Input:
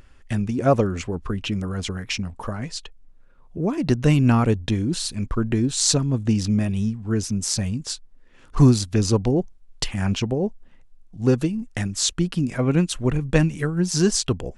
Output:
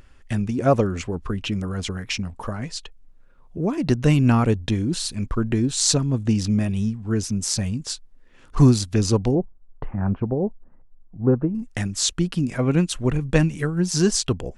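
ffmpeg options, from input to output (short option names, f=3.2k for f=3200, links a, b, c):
-filter_complex "[0:a]asettb=1/sr,asplit=3[a][b][c];[a]atrim=end=9.354[d];[b]atrim=start=9.35:end=11.55,asetpts=PTS-STARTPTS,afade=t=in:d=0.004:c=qsin,afade=t=out:st=2.196:d=0.004:c=qsin,lowpass=f=1.3k:w=0.5412,lowpass=f=1.3k:w=1.3066[e];[c]atrim=start=11.546[f];[d][e]acrossfade=d=0.004:c1=hsin:c2=qsin[g];[g][f]acrossfade=d=0.004:c1=qsin:c2=hsin"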